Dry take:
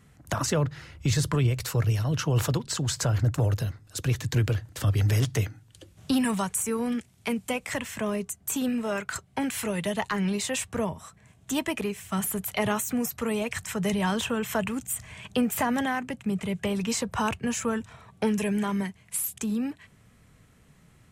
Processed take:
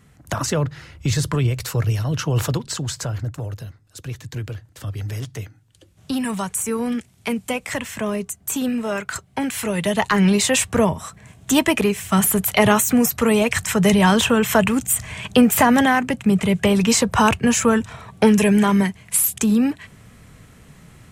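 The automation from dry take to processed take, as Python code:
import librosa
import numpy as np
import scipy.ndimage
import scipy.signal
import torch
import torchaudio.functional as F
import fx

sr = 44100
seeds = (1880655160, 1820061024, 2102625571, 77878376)

y = fx.gain(x, sr, db=fx.line((2.65, 4.0), (3.44, -5.0), (5.49, -5.0), (6.7, 5.0), (9.57, 5.0), (10.23, 11.5)))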